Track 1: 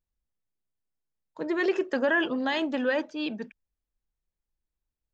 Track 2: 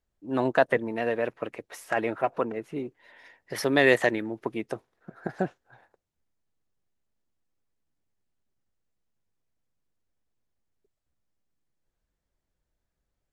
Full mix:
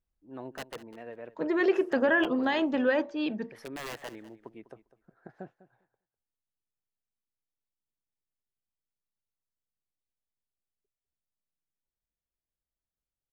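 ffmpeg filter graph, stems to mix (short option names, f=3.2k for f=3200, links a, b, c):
-filter_complex "[0:a]bandreject=f=114.6:t=h:w=4,bandreject=f=229.2:t=h:w=4,bandreject=f=343.8:t=h:w=4,bandreject=f=458.4:t=h:w=4,bandreject=f=573:t=h:w=4,bandreject=f=687.6:t=h:w=4,bandreject=f=802.2:t=h:w=4,bandreject=f=916.8:t=h:w=4,bandreject=f=1.0314k:t=h:w=4,bandreject=f=1.146k:t=h:w=4,volume=1.5dB[a];[1:a]aeval=exprs='(mod(4.73*val(0)+1,2)-1)/4.73':c=same,volume=-15.5dB,asplit=2[b][c];[c]volume=-16.5dB,aecho=0:1:200|400|600:1|0.15|0.0225[d];[a][b][d]amix=inputs=3:normalize=0,highshelf=f=3.2k:g=-9.5"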